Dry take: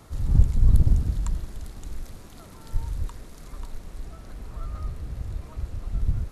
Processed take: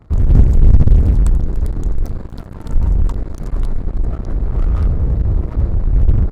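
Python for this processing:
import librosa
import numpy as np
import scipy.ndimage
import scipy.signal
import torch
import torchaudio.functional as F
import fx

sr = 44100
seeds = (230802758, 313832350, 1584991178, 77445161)

p1 = fx.wiener(x, sr, points=15)
p2 = fx.fuzz(p1, sr, gain_db=38.0, gate_db=-43.0)
p3 = p1 + (p2 * librosa.db_to_amplitude(-7.0))
p4 = fx.low_shelf(p3, sr, hz=260.0, db=11.0)
p5 = np.clip(10.0 ** (-1.5 / 20.0) * p4, -1.0, 1.0) / 10.0 ** (-1.5 / 20.0)
p6 = fx.dynamic_eq(p5, sr, hz=410.0, q=1.3, threshold_db=-31.0, ratio=4.0, max_db=5)
p7 = fx.doppler_dist(p6, sr, depth_ms=0.49)
y = p7 * librosa.db_to_amplitude(-3.5)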